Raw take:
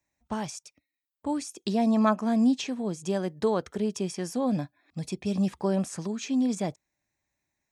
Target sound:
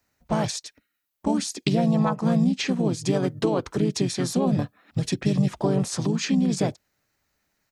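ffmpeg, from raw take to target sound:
-filter_complex "[0:a]acompressor=threshold=0.0447:ratio=12,asplit=3[s0][s1][s2];[s1]asetrate=29433,aresample=44100,atempo=1.49831,volume=0.355[s3];[s2]asetrate=33038,aresample=44100,atempo=1.33484,volume=0.794[s4];[s0][s3][s4]amix=inputs=3:normalize=0,volume=2.11"

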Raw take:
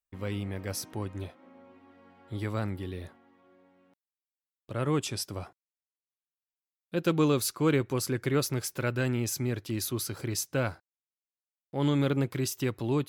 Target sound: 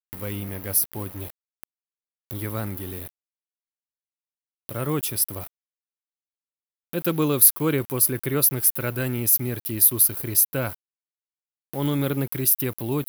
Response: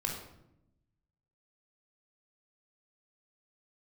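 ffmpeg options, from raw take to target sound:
-af "aeval=exprs='val(0)*gte(abs(val(0)),0.00631)':c=same,acompressor=mode=upward:threshold=0.01:ratio=2.5,aexciter=amount=11.8:drive=5.1:freq=10000,volume=1.26"

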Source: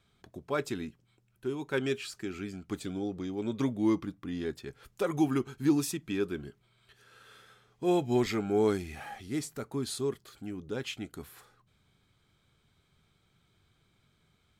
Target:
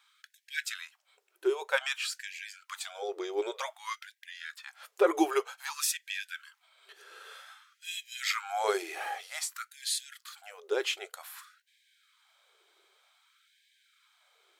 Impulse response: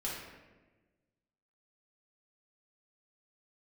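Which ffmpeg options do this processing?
-filter_complex "[0:a]asettb=1/sr,asplit=3[s0][s1][s2];[s0]atrim=end=4.274[s3];[s1]atrim=start=4.27:end=5.18,asetpts=PTS-STARTPTS,afade=t=in:d=0.004:c=qsin,afade=t=out:st=0.906:d=0.004:c=qsin,acrossover=split=2900[s4][s5];[s5]acompressor=threshold=0.002:ratio=4:attack=1:release=60[s6];[s4][s6]amix=inputs=2:normalize=0[s7];[s2]atrim=start=5.176[s8];[s3][s7]acrossfade=d=0.004:c1=hsin:c2=qsin[s9];[s9][s8]acrossfade=d=0.004:c1=qsin:c2=hsin,afftfilt=real='re*gte(b*sr/1024,320*pow(1600/320,0.5+0.5*sin(2*PI*0.53*pts/sr)))':imag='im*gte(b*sr/1024,320*pow(1600/320,0.5+0.5*sin(2*PI*0.53*pts/sr)))':win_size=1024:overlap=0.75,volume=2.24"

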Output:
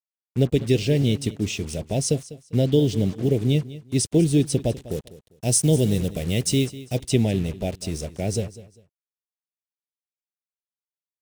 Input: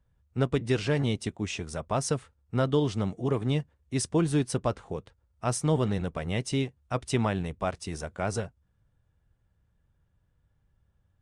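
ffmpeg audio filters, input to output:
-filter_complex "[0:a]asuperstop=centerf=1200:order=4:qfactor=0.58,acrusher=bits=7:mix=0:aa=0.5,asettb=1/sr,asplit=3[s0][s1][s2];[s0]atrim=end=4.904[s3];[s1]atrim=start=4.9:end=7,asetpts=PTS-STARTPTS,afade=t=in:d=0.004:c=qsin,afade=t=out:st=2.096:d=0.004:c=qsin,highshelf=f=5900:g=10.5[s4];[s2]atrim=start=6.996[s5];[s3][s4]acrossfade=d=0.004:c1=hsin:c2=qsin[s6];[s6][s5]acrossfade=d=0.004:c1=qsin:c2=hsin,aecho=1:1:199|398:0.141|0.0367,volume=2.24"

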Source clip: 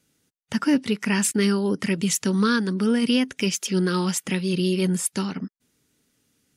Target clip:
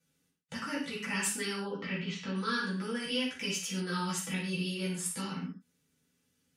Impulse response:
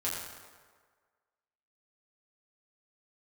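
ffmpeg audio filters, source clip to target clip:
-filter_complex "[0:a]asettb=1/sr,asplit=3[s0][s1][s2];[s0]atrim=end=1.604[s3];[s1]atrim=start=1.6:end=2.36,asetpts=PTS-STARTPTS,afade=t=in:d=0.004:c=qsin,afade=t=out:st=0.756:d=0.004:c=qsin,lowpass=f=4000:w=0.5412,lowpass=f=4000:w=1.3066[s4];[s2]atrim=start=2.356[s5];[s3][s4]acrossfade=d=0.004:c1=hsin:c2=qsin[s6];[s6][s5]acrossfade=d=0.004:c1=qsin:c2=hsin,acrossover=split=550[s7][s8];[s7]acompressor=threshold=0.0355:ratio=6[s9];[s9][s8]amix=inputs=2:normalize=0[s10];[1:a]atrim=start_sample=2205,afade=t=out:st=0.34:d=0.01,atrim=end_sample=15435,asetrate=83790,aresample=44100[s11];[s10][s11]afir=irnorm=-1:irlink=0,volume=0.473"

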